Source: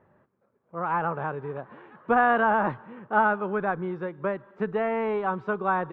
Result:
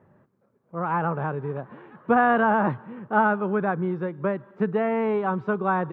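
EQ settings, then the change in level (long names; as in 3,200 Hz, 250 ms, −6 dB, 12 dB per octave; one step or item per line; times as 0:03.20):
high-pass filter 110 Hz
low-shelf EQ 240 Hz +11.5 dB
0.0 dB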